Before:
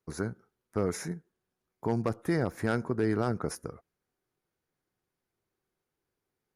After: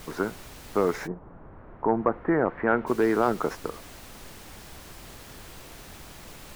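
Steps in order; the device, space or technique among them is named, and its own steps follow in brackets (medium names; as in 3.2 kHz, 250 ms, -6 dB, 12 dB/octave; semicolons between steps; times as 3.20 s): horn gramophone (band-pass 270–3200 Hz; peaking EQ 990 Hz +5 dB; wow and flutter; pink noise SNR 15 dB); 1.06–2.86 s: low-pass 1.1 kHz -> 2.4 kHz 24 dB/octave; trim +7 dB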